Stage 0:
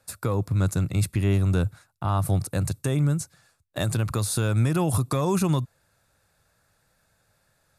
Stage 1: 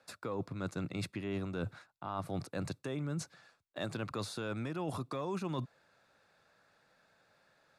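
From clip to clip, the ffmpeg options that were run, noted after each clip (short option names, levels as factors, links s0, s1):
-filter_complex "[0:a]acrossover=split=180 5200:gain=0.112 1 0.1[s0][s1][s2];[s0][s1][s2]amix=inputs=3:normalize=0,areverse,acompressor=threshold=0.0158:ratio=6,areverse,volume=1.12"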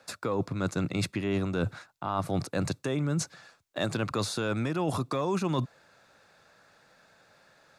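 -af "equalizer=f=6500:t=o:w=0.67:g=3.5,volume=2.66"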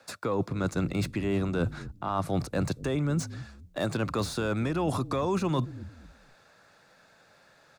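-filter_complex "[0:a]acrossover=split=400|1500[s0][s1][s2];[s0]asplit=4[s3][s4][s5][s6];[s4]adelay=232,afreqshift=-39,volume=0.266[s7];[s5]adelay=464,afreqshift=-78,volume=0.0851[s8];[s6]adelay=696,afreqshift=-117,volume=0.0272[s9];[s3][s7][s8][s9]amix=inputs=4:normalize=0[s10];[s2]asoftclip=type=tanh:threshold=0.0178[s11];[s10][s1][s11]amix=inputs=3:normalize=0,volume=1.12"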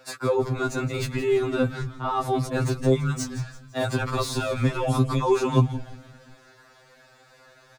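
-filter_complex "[0:a]asplit=5[s0][s1][s2][s3][s4];[s1]adelay=168,afreqshift=-120,volume=0.211[s5];[s2]adelay=336,afreqshift=-240,volume=0.0933[s6];[s3]adelay=504,afreqshift=-360,volume=0.0407[s7];[s4]adelay=672,afreqshift=-480,volume=0.018[s8];[s0][s5][s6][s7][s8]amix=inputs=5:normalize=0,afftfilt=real='re*2.45*eq(mod(b,6),0)':imag='im*2.45*eq(mod(b,6),0)':win_size=2048:overlap=0.75,volume=2.37"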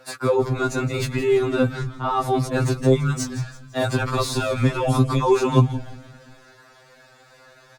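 -af "volume=1.5" -ar 48000 -c:a libopus -b:a 32k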